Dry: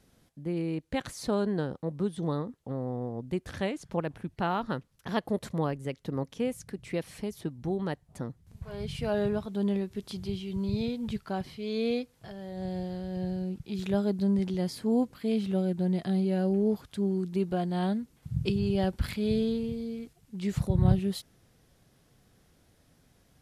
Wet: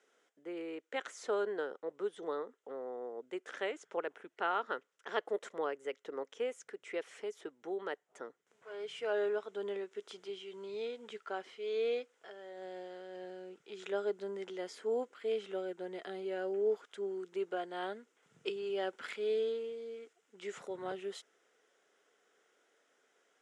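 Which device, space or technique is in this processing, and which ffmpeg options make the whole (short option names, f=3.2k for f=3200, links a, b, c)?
phone speaker on a table: -af "highpass=f=380:w=0.5412,highpass=f=380:w=1.3066,equalizer=f=430:t=q:w=4:g=7,equalizer=f=1.4k:t=q:w=4:g=9,equalizer=f=2k:t=q:w=4:g=5,equalizer=f=3.1k:t=q:w=4:g=4,equalizer=f=4.4k:t=q:w=4:g=-9,equalizer=f=7.1k:t=q:w=4:g=4,lowpass=f=8.1k:w=0.5412,lowpass=f=8.1k:w=1.3066,equalizer=f=69:w=0.84:g=5,volume=-6.5dB"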